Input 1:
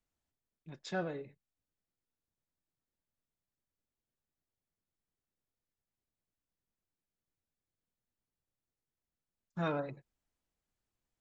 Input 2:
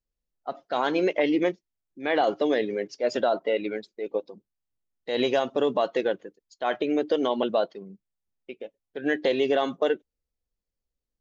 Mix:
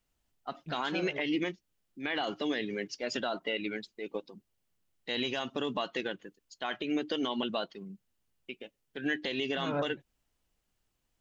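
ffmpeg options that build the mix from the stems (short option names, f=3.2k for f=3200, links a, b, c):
-filter_complex "[0:a]acontrast=51,volume=1.5dB[a];[1:a]equalizer=f=540:w=0.98:g=-13,volume=2dB,asplit=2[b][c];[c]apad=whole_len=494211[d];[a][d]sidechaincompress=threshold=-33dB:ratio=8:attack=16:release=250[e];[e][b]amix=inputs=2:normalize=0,equalizer=f=2.9k:t=o:w=0.23:g=5,alimiter=limit=-21.5dB:level=0:latency=1:release=162"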